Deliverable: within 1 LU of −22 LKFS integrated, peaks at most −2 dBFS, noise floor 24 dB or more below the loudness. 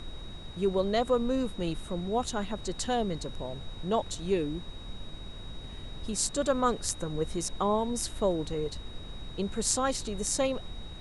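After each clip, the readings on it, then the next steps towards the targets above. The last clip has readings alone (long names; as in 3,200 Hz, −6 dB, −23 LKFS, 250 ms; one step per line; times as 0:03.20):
interfering tone 3,800 Hz; level of the tone −48 dBFS; background noise floor −43 dBFS; target noise floor −55 dBFS; integrated loudness −31.0 LKFS; sample peak −9.0 dBFS; target loudness −22.0 LKFS
→ notch filter 3,800 Hz, Q 30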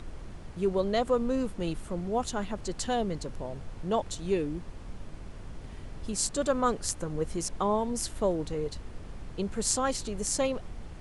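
interfering tone none found; background noise floor −44 dBFS; target noise floor −55 dBFS
→ noise reduction from a noise print 11 dB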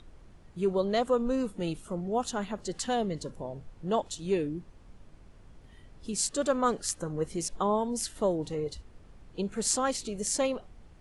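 background noise floor −54 dBFS; target noise floor −55 dBFS
→ noise reduction from a noise print 6 dB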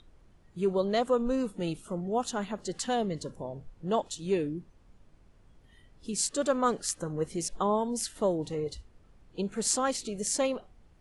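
background noise floor −59 dBFS; integrated loudness −31.0 LKFS; sample peak −9.5 dBFS; target loudness −22.0 LKFS
→ level +9 dB
brickwall limiter −2 dBFS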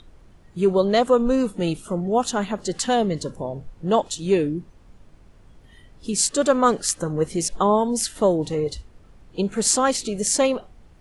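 integrated loudness −22.0 LKFS; sample peak −2.0 dBFS; background noise floor −50 dBFS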